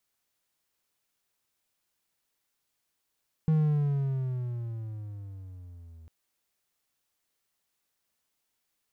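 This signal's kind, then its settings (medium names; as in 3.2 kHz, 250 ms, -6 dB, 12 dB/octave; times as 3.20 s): gliding synth tone triangle, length 2.60 s, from 159 Hz, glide -12 st, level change -27 dB, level -18 dB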